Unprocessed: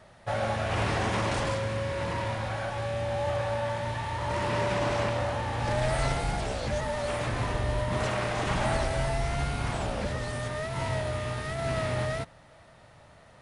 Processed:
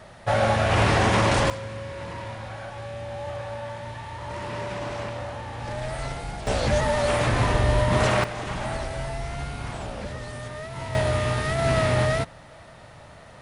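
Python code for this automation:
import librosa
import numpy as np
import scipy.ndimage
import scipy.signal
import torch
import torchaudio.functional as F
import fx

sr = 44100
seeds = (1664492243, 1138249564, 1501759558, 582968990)

y = fx.gain(x, sr, db=fx.steps((0.0, 8.0), (1.5, -4.0), (6.47, 8.0), (8.24, -2.5), (10.95, 8.0)))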